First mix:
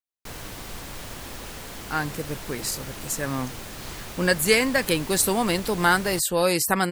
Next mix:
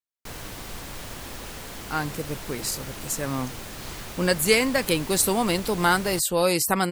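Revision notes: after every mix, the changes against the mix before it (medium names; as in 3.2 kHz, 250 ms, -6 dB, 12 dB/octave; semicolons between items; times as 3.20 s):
speech: add peaking EQ 1.7 kHz -6 dB 0.28 oct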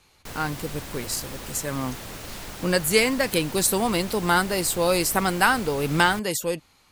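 speech: entry -1.55 s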